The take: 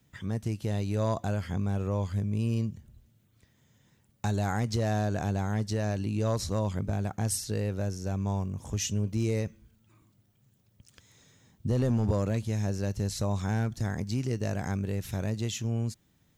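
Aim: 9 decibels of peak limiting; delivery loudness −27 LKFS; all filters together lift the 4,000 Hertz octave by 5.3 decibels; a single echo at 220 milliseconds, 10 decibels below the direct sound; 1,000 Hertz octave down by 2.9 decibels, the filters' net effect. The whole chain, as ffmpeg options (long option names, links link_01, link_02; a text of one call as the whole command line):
ffmpeg -i in.wav -af "equalizer=frequency=1000:width_type=o:gain=-4.5,equalizer=frequency=4000:width_type=o:gain=7,alimiter=level_in=1dB:limit=-24dB:level=0:latency=1,volume=-1dB,aecho=1:1:220:0.316,volume=7.5dB" out.wav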